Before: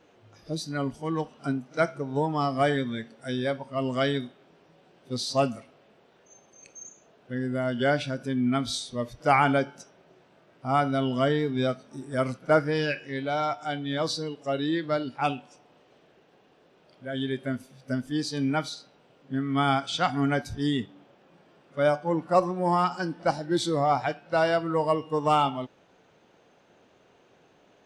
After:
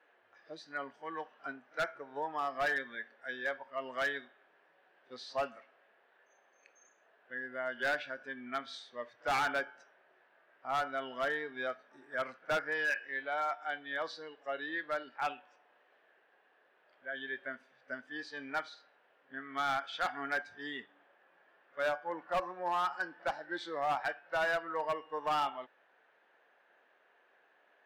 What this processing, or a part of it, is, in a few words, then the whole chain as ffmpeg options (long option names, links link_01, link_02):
megaphone: -af "highpass=650,lowpass=2600,equalizer=frequency=1700:width_type=o:width=0.35:gain=11,asoftclip=type=hard:threshold=-21dB,volume=-6dB"